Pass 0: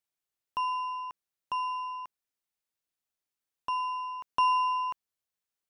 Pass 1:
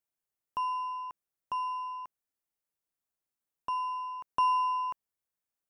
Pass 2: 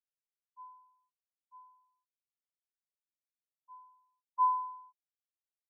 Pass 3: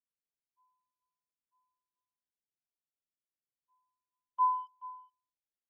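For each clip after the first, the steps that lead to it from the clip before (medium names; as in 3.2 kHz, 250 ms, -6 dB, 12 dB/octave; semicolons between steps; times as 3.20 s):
peaking EQ 3.7 kHz -7.5 dB 1.9 oct
spectral contrast expander 4:1; trim -1.5 dB
local Wiener filter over 41 samples; delay 429 ms -17.5 dB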